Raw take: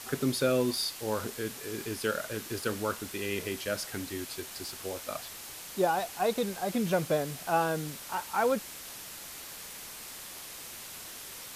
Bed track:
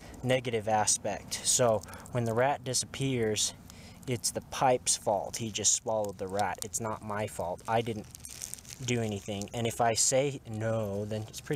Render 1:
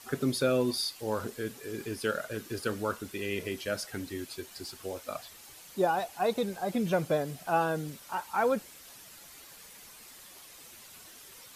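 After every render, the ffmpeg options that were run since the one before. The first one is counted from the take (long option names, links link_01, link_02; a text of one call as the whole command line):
ffmpeg -i in.wav -af "afftdn=noise_reduction=9:noise_floor=-44" out.wav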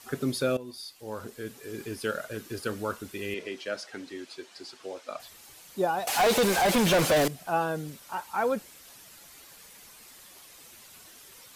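ffmpeg -i in.wav -filter_complex "[0:a]asettb=1/sr,asplit=3[link_01][link_02][link_03];[link_01]atrim=end=3.344[link_04];[link_02]atrim=start=3.34:end=5.2,asetpts=PTS-STARTPTS,afade=type=in:duration=0.004:curve=qsin,afade=type=out:start_time=1.856:duration=0.004:curve=qsin,highpass=270,lowpass=5900[link_05];[link_03]atrim=start=5.196[link_06];[link_04][link_05]acrossfade=duration=0.004:curve1=hsin:curve2=qsin[link_07];[link_07][link_06]acrossfade=duration=0.004:curve1=qsin:curve2=hsin,asettb=1/sr,asplit=3[link_08][link_09][link_10];[link_08]atrim=end=6.074[link_11];[link_09]atrim=start=6.07:end=7.28,asetpts=PTS-STARTPTS,afade=type=in:duration=0.004:curve=qsin,afade=type=out:start_time=1.206:duration=0.004:curve=qsin,asplit=2[link_12][link_13];[link_13]highpass=frequency=720:poles=1,volume=32dB,asoftclip=type=tanh:threshold=-15.5dB[link_14];[link_12][link_14]amix=inputs=2:normalize=0,lowpass=frequency=7400:poles=1,volume=-6dB[link_15];[link_10]atrim=start=7.276[link_16];[link_11][link_15]acrossfade=duration=0.004:curve1=hsin:curve2=qsin[link_17];[link_17][link_16]acrossfade=duration=0.004:curve1=qsin:curve2=hsin,asplit=2[link_18][link_19];[link_18]atrim=end=0.57,asetpts=PTS-STARTPTS,afade=type=out:start_time=0.566:duration=0.004:curve=hsin:silence=0.158489[link_20];[link_19]atrim=start=0.57,asetpts=PTS-STARTPTS,afade=type=in:duration=1.22:silence=0.158489[link_21];[link_20][link_21]concat=n=2:v=0:a=1" out.wav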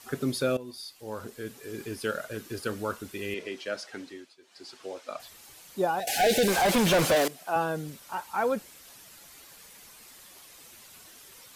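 ffmpeg -i in.wav -filter_complex "[0:a]asettb=1/sr,asplit=3[link_01][link_02][link_03];[link_01]atrim=end=6.004[link_04];[link_02]atrim=start=6:end=6.48,asetpts=PTS-STARTPTS,afade=type=in:duration=0.004:curve=qsin,afade=type=out:start_time=0.476:duration=0.004:curve=qsin,asuperstop=centerf=1100:order=20:qfactor=1.7[link_05];[link_03]atrim=start=6.476[link_06];[link_04][link_05]acrossfade=duration=0.004:curve1=hsin:curve2=qsin[link_07];[link_07][link_06]acrossfade=duration=0.004:curve1=qsin:curve2=hsin,asettb=1/sr,asplit=3[link_08][link_09][link_10];[link_08]atrim=end=7.154[link_11];[link_09]atrim=start=7.15:end=7.56,asetpts=PTS-STARTPTS,afade=type=in:duration=0.004:curve=qsin,afade=type=out:start_time=0.406:duration=0.004:curve=qsin,highpass=300[link_12];[link_10]atrim=start=7.556[link_13];[link_11][link_12]acrossfade=duration=0.004:curve1=hsin:curve2=qsin[link_14];[link_14][link_13]acrossfade=duration=0.004:curve1=qsin:curve2=hsin,asplit=3[link_15][link_16][link_17];[link_15]atrim=end=4.35,asetpts=PTS-STARTPTS,afade=type=out:start_time=4.01:duration=0.34:silence=0.149624[link_18];[link_16]atrim=start=4.35:end=4.4,asetpts=PTS-STARTPTS,volume=-16.5dB[link_19];[link_17]atrim=start=4.4,asetpts=PTS-STARTPTS,afade=type=in:duration=0.34:silence=0.149624[link_20];[link_18][link_19][link_20]concat=n=3:v=0:a=1" out.wav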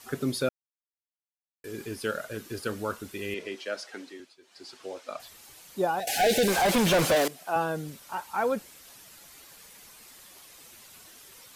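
ffmpeg -i in.wav -filter_complex "[0:a]asettb=1/sr,asplit=3[link_01][link_02][link_03];[link_01]atrim=end=3.554[link_04];[link_02]atrim=start=3.55:end=4.2,asetpts=PTS-STARTPTS,afade=type=in:duration=0.004:curve=qsin,afade=type=out:start_time=0.646:duration=0.004:curve=qsin,highpass=240[link_05];[link_03]atrim=start=4.196[link_06];[link_04][link_05]acrossfade=duration=0.004:curve1=hsin:curve2=qsin[link_07];[link_07][link_06]acrossfade=duration=0.004:curve1=qsin:curve2=hsin,asplit=3[link_08][link_09][link_10];[link_08]atrim=end=0.49,asetpts=PTS-STARTPTS,afade=type=out:start_time=0.486:duration=0.004:curve=hsin[link_11];[link_09]atrim=start=0.49:end=1.64,asetpts=PTS-STARTPTS,volume=0[link_12];[link_10]atrim=start=1.64,asetpts=PTS-STARTPTS,afade=type=in:duration=0.004:curve=hsin[link_13];[link_11][link_12][link_13]concat=n=3:v=0:a=1" out.wav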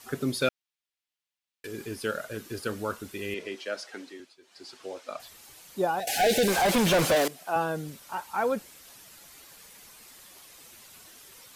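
ffmpeg -i in.wav -filter_complex "[0:a]asettb=1/sr,asplit=3[link_01][link_02][link_03];[link_01]atrim=end=0.424[link_04];[link_02]atrim=start=0.42:end=1.67,asetpts=PTS-STARTPTS,afade=type=in:duration=0.004:curve=qsin,afade=type=out:start_time=1.246:duration=0.004:curve=qsin,equalizer=frequency=3000:width=0.62:gain=10.5[link_05];[link_03]atrim=start=1.666[link_06];[link_04][link_05]acrossfade=duration=0.004:curve1=hsin:curve2=qsin[link_07];[link_07][link_06]acrossfade=duration=0.004:curve1=qsin:curve2=hsin" out.wav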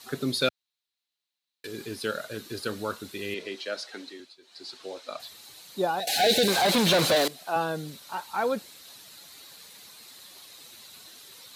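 ffmpeg -i in.wav -af "highpass=91,equalizer=frequency=4000:width_type=o:width=0.35:gain=12" out.wav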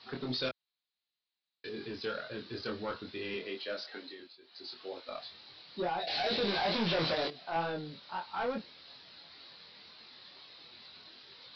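ffmpeg -i in.wav -af "aresample=11025,asoftclip=type=tanh:threshold=-26dB,aresample=44100,flanger=delay=22.5:depth=2.3:speed=2.2" out.wav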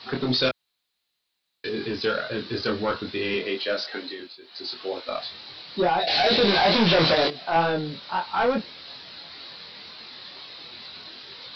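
ffmpeg -i in.wav -af "volume=12dB" out.wav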